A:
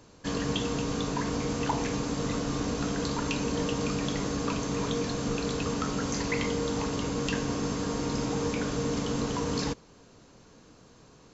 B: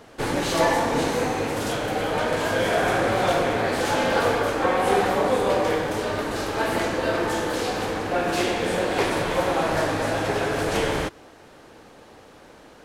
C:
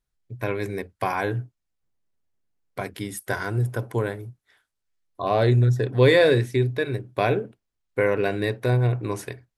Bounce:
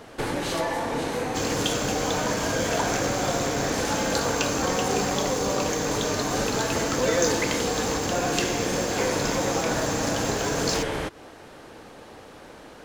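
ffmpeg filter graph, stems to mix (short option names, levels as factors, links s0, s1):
-filter_complex "[0:a]aemphasis=mode=production:type=75fm,aeval=exprs='sgn(val(0))*max(abs(val(0))-0.0106,0)':c=same,adelay=1100,volume=1.26[s0];[1:a]acompressor=threshold=0.0316:ratio=3,volume=1.41[s1];[2:a]aecho=1:1:4:0.8,adelay=1000,volume=0.237[s2];[s0][s1][s2]amix=inputs=3:normalize=0"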